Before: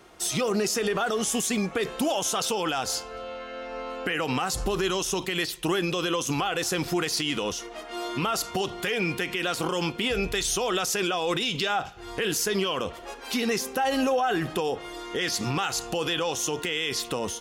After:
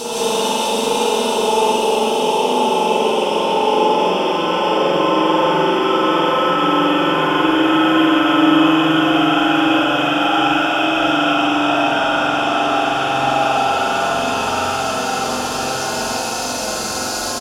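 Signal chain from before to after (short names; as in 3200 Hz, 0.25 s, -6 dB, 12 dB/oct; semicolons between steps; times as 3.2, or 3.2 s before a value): band noise 170–900 Hz -40 dBFS; Paulstretch 44×, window 0.25 s, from 2.5; on a send: loudspeakers at several distances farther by 43 m -1 dB, 57 m 0 dB; on the sum: spring tank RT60 1.5 s, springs 44 ms, chirp 35 ms, DRR -6 dB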